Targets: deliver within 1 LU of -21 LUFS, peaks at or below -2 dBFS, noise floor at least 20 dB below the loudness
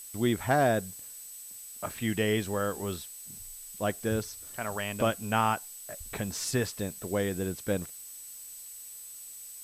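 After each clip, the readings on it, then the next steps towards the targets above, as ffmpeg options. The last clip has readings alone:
steady tone 8000 Hz; tone level -45 dBFS; noise floor -45 dBFS; noise floor target -52 dBFS; loudness -32.0 LUFS; peak -12.5 dBFS; loudness target -21.0 LUFS
-> -af "bandreject=f=8k:w=30"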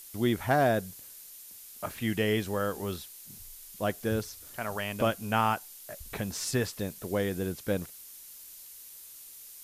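steady tone none; noise floor -49 dBFS; noise floor target -51 dBFS
-> -af "afftdn=nr=6:nf=-49"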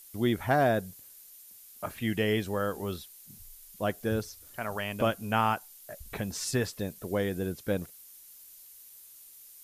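noise floor -52 dBFS; loudness -31.0 LUFS; peak -12.5 dBFS; loudness target -21.0 LUFS
-> -af "volume=10dB"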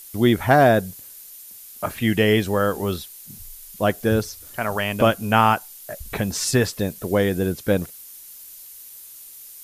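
loudness -21.0 LUFS; peak -2.5 dBFS; noise floor -42 dBFS

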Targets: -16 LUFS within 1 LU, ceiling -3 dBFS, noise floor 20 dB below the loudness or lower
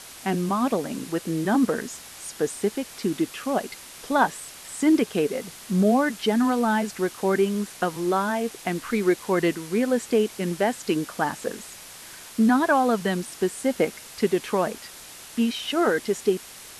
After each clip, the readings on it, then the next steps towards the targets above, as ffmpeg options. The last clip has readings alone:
noise floor -43 dBFS; noise floor target -45 dBFS; loudness -24.5 LUFS; peak -8.5 dBFS; loudness target -16.0 LUFS
-> -af "afftdn=nr=6:nf=-43"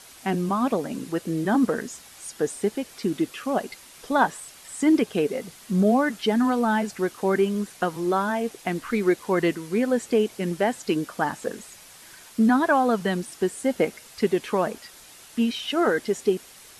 noise floor -48 dBFS; loudness -25.0 LUFS; peak -8.5 dBFS; loudness target -16.0 LUFS
-> -af "volume=9dB,alimiter=limit=-3dB:level=0:latency=1"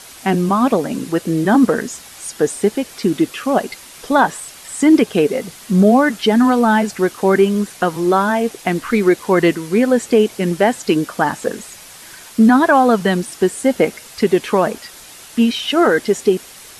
loudness -16.0 LUFS; peak -3.0 dBFS; noise floor -39 dBFS

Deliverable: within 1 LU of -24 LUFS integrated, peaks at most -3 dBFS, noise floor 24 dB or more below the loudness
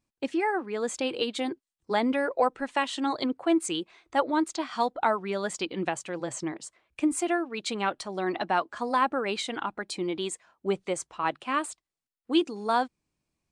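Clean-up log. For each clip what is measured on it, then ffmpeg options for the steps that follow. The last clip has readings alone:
loudness -29.5 LUFS; peak -10.0 dBFS; loudness target -24.0 LUFS
-> -af "volume=5.5dB"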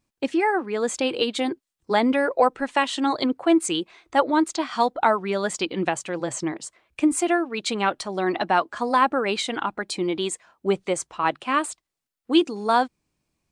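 loudness -24.0 LUFS; peak -4.5 dBFS; noise floor -84 dBFS

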